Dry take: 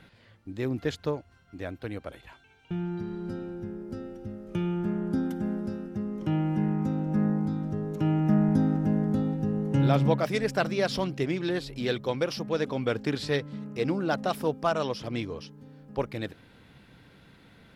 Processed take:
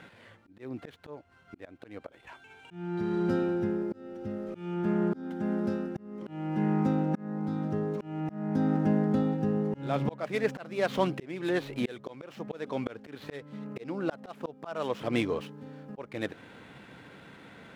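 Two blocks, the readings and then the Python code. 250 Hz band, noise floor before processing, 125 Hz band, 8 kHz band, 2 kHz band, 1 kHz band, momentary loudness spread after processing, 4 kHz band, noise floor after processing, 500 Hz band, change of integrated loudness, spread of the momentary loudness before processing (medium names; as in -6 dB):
-2.5 dB, -58 dBFS, -5.5 dB, no reading, -3.5 dB, -3.0 dB, 21 LU, -7.0 dB, -57 dBFS, -2.5 dB, -2.5 dB, 14 LU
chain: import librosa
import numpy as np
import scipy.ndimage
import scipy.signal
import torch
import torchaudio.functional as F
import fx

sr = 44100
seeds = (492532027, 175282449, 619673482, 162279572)

p1 = scipy.ndimage.median_filter(x, 9, mode='constant')
p2 = fx.rider(p1, sr, range_db=10, speed_s=2.0)
p3 = p1 + (p2 * 10.0 ** (1.5 / 20.0))
p4 = fx.highpass(p3, sr, hz=320.0, slope=6)
p5 = fx.high_shelf(p4, sr, hz=7200.0, db=-10.0)
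y = fx.auto_swell(p5, sr, attack_ms=509.0)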